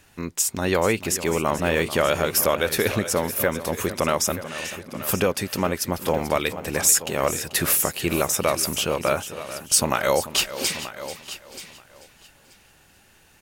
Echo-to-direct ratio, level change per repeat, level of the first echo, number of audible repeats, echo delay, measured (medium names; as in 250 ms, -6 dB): -10.5 dB, no regular repeats, -14.0 dB, 5, 438 ms